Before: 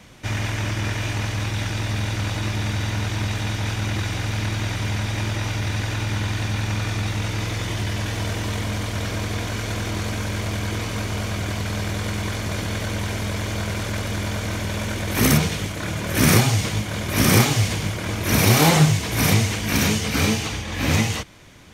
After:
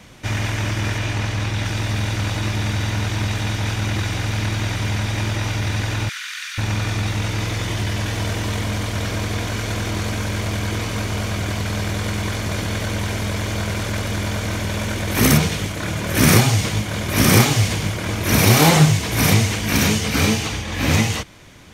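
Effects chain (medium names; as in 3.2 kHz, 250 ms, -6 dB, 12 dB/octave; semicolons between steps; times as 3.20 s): 0.98–1.65 s: treble shelf 9.6 kHz -8 dB; 6.09–6.58 s: steep high-pass 1.3 kHz 48 dB/octave; trim +2.5 dB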